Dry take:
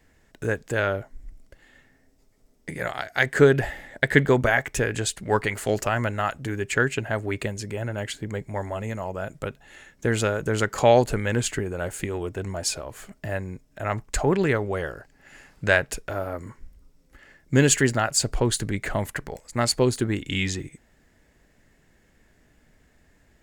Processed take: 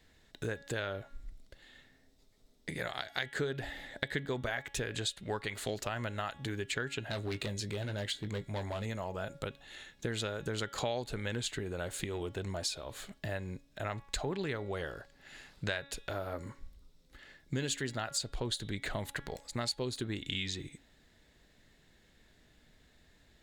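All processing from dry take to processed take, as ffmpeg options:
-filter_complex "[0:a]asettb=1/sr,asplit=3[s0][s1][s2];[s0]atrim=end=7.064[s3];[s1]atrim=start=7.06:end=8.86,asetpts=PTS-STARTPTS,afade=t=in:d=0.004:c=qsin,afade=t=out:st=1.796:d=0.004:c=qsin,asoftclip=type=hard:threshold=0.0531,asplit=2[s4][s5];[s5]adelay=20,volume=0.282[s6];[s4][s6]amix=inputs=2:normalize=0,atrim=end_sample=79380[s7];[s2]atrim=start=8.856[s8];[s3][s7]acrossfade=d=0.004:c1=hsin:c2=qsin[s9];[s9][s8]acrossfade=d=0.004:c1=qsin:c2=hsin,equalizer=f=3800:w=2.4:g=13.5,bandreject=f=279.3:t=h:w=4,bandreject=f=558.6:t=h:w=4,bandreject=f=837.9:t=h:w=4,bandreject=f=1117.2:t=h:w=4,bandreject=f=1396.5:t=h:w=4,bandreject=f=1675.8:t=h:w=4,bandreject=f=1955.1:t=h:w=4,bandreject=f=2234.4:t=h:w=4,bandreject=f=2513.7:t=h:w=4,bandreject=f=2793:t=h:w=4,bandreject=f=3072.3:t=h:w=4,bandreject=f=3351.6:t=h:w=4,bandreject=f=3630.9:t=h:w=4,bandreject=f=3910.2:t=h:w=4,acompressor=threshold=0.0355:ratio=4,volume=0.562"

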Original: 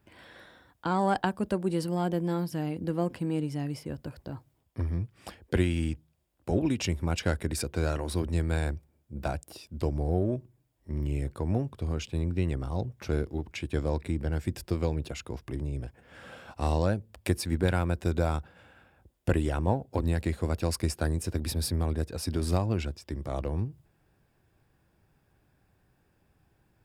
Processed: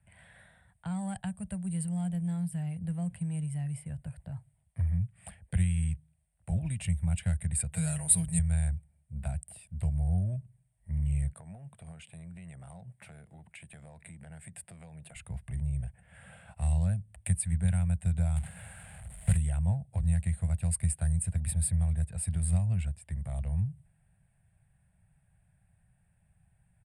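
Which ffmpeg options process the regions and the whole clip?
-filter_complex "[0:a]asettb=1/sr,asplit=3[s0][s1][s2];[s0]atrim=end=7.724[s3];[s1]atrim=start=7.72:end=8.39,asetpts=PTS-STARTPTS,afade=t=in:d=0.004:c=qsin,afade=t=out:st=0.666:d=0.004:c=qsin,aemphasis=mode=production:type=75kf,aecho=1:1:6.3:0.96,atrim=end_sample=29547[s4];[s2]atrim=start=8.386[s5];[s3][s4]acrossfade=d=0.004:c1=hsin:c2=qsin[s6];[s6][s5]acrossfade=d=0.004:c1=qsin:c2=hsin,asettb=1/sr,asplit=3[s7][s8][s9];[s7]atrim=end=11.334[s10];[s8]atrim=start=11.33:end=15.16,asetpts=PTS-STARTPTS,afade=t=in:d=0.004:c=qsin,afade=t=out:st=3.826:d=0.004:c=qsin,highpass=210,acompressor=threshold=0.0126:ratio=5:attack=3.2:release=140:knee=1:detection=peak[s11];[s9]atrim=start=15.156[s12];[s10][s11]acrossfade=d=0.004:c1=hsin:c2=qsin[s13];[s13][s12]acrossfade=d=0.004:c1=qsin:c2=hsin,asettb=1/sr,asplit=3[s14][s15][s16];[s14]atrim=end=18.364[s17];[s15]atrim=start=18.36:end=19.37,asetpts=PTS-STARTPTS,afade=t=in:d=0.004:c=qsin,afade=t=out:st=1.006:d=0.004:c=qsin,aeval=exprs='val(0)+0.5*0.0168*sgn(val(0))':c=same,agate=range=0.0224:threshold=0.0112:ratio=3:release=100:detection=peak,acrusher=bits=2:mode=log:mix=0:aa=0.000001[s18];[s16]atrim=start=19.366[s19];[s17][s18]acrossfade=d=0.004:c1=hsin:c2=qsin[s20];[s20][s19]acrossfade=d=0.004:c1=qsin:c2=hsin,firequalizer=gain_entry='entry(180,0);entry(270,-25);entry(380,-25);entry(660,-6);entry(1100,-15);entry(1900,-4);entry(5800,-26);entry(8700,9);entry(14000,-27)':delay=0.05:min_phase=1,acrossover=split=210|3000[s21][s22][s23];[s22]acompressor=threshold=0.00251:ratio=2[s24];[s21][s24][s23]amix=inputs=3:normalize=0,volume=1.26"

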